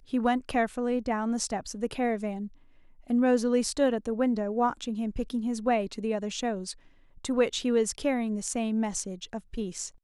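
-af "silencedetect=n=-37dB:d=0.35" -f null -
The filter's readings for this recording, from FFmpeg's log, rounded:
silence_start: 2.47
silence_end: 3.10 | silence_duration: 0.63
silence_start: 6.72
silence_end: 7.25 | silence_duration: 0.53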